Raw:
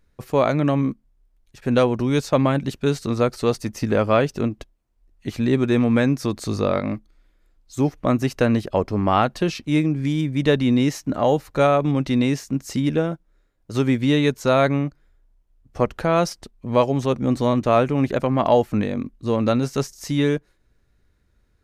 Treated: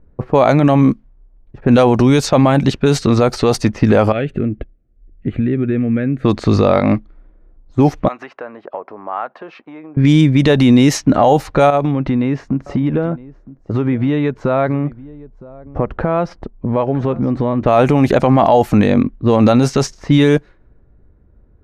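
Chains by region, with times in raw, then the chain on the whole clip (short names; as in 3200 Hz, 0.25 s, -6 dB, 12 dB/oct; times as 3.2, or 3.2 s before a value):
4.12–6.25 compressor, threshold -26 dBFS + fixed phaser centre 2300 Hz, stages 4
8.08–9.97 compressor 12:1, threshold -24 dBFS + HPF 900 Hz + high shelf 4900 Hz -11.5 dB
11.7–17.63 compressor 5:1, threshold -27 dBFS + echo 0.963 s -19.5 dB
whole clip: low-pass opened by the level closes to 720 Hz, open at -15.5 dBFS; dynamic EQ 780 Hz, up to +7 dB, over -36 dBFS, Q 3.1; maximiser +15 dB; gain -1 dB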